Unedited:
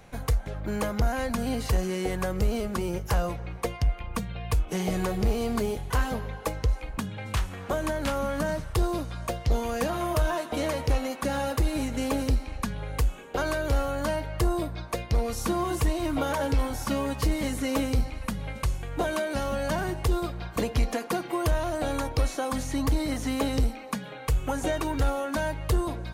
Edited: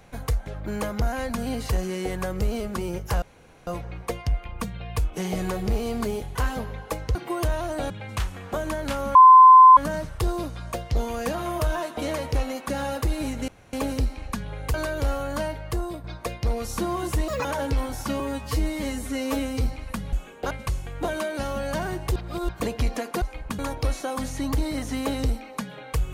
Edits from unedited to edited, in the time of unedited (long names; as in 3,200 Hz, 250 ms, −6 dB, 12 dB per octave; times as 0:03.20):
0:03.22: splice in room tone 0.45 s
0:06.70–0:07.07: swap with 0:21.18–0:21.93
0:08.32: insert tone 1,030 Hz −6.5 dBFS 0.62 s
0:12.03: splice in room tone 0.25 s
0:13.04–0:13.42: move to 0:18.47
0:14.10–0:14.72: fade out, to −6.5 dB
0:15.96–0:16.26: play speed 179%
0:17.01–0:17.95: time-stretch 1.5×
0:20.12–0:20.45: reverse